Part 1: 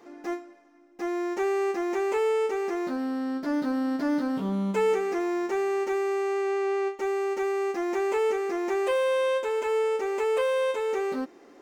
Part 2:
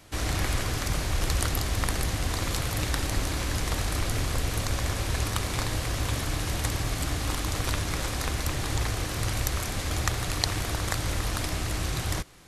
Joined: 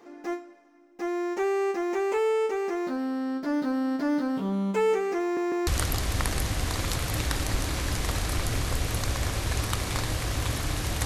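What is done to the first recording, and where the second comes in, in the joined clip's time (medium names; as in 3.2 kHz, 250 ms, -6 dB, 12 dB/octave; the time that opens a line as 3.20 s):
part 1
5.22 s: stutter in place 0.15 s, 3 plays
5.67 s: go over to part 2 from 1.30 s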